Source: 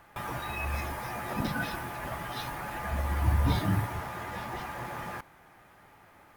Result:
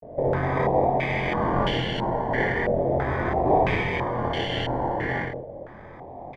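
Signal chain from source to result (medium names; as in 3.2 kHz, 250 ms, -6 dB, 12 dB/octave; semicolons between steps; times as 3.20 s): tilt shelf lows -8 dB, about 740 Hz; in parallel at 0 dB: compression, threshold -40 dBFS, peak gain reduction 14 dB; on the sum: formant shift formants -2 st; sample-and-hold 33×; vibrato 0.37 Hz 92 cents; doubling 23 ms -3 dB; on a send: loudspeakers at several distances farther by 20 m -2 dB, 63 m -8 dB; on the sum: step-sequenced low-pass 3 Hz 590–3000 Hz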